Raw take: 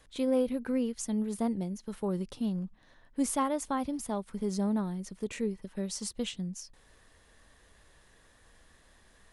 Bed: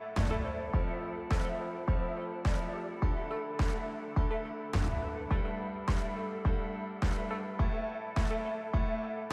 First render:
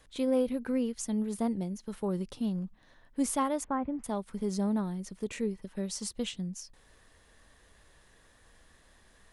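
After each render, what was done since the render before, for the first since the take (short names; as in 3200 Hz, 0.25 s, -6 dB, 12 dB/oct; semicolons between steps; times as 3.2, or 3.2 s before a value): 3.64–4.04 LPF 2000 Hz 24 dB/oct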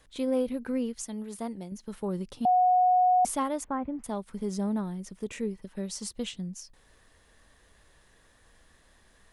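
1.02–1.72 low shelf 380 Hz -8.5 dB; 2.45–3.25 bleep 731 Hz -18.5 dBFS; 4.47–5.54 notch 4300 Hz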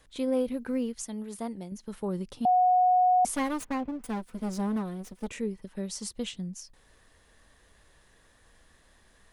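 0.39–1.11 short-mantissa float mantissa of 6-bit; 3.35–5.28 minimum comb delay 4 ms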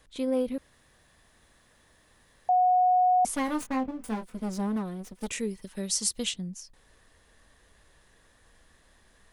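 0.58–2.49 room tone; 3.46–4.37 doubler 23 ms -6 dB; 5.21–6.34 high shelf 2600 Hz +12 dB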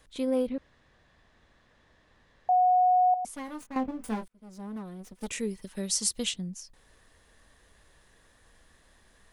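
0.47–2.52 air absorption 140 m; 3.14–3.76 gain -10 dB; 4.28–5.51 fade in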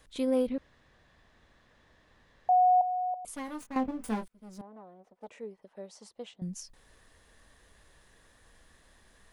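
2.81–3.28 fixed phaser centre 1200 Hz, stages 8; 4.61–6.42 band-pass 680 Hz, Q 2.1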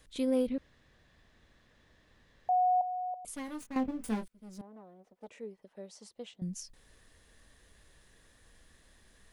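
bell 930 Hz -5.5 dB 1.6 oct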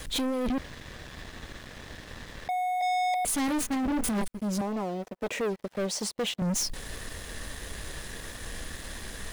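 negative-ratio compressor -37 dBFS, ratio -1; sample leveller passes 5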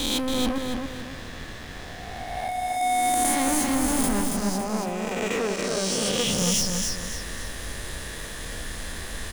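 spectral swells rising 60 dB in 1.86 s; feedback echo 0.278 s, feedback 37%, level -4 dB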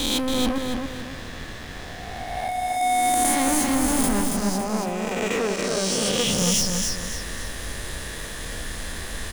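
gain +2 dB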